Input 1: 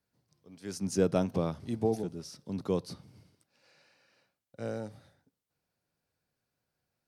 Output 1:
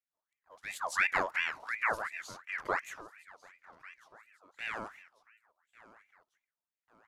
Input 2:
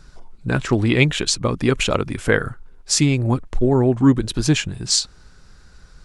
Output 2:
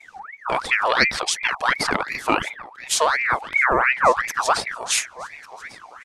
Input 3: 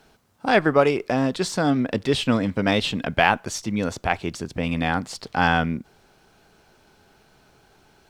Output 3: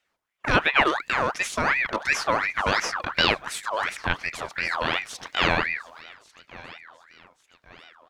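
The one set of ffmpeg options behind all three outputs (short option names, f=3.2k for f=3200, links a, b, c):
-af "agate=range=-16dB:threshold=-52dB:ratio=16:detection=peak,aecho=1:1:1146|2292|3438:0.106|0.0455|0.0196,aeval=exprs='val(0)*sin(2*PI*1500*n/s+1500*0.5/2.8*sin(2*PI*2.8*n/s))':c=same"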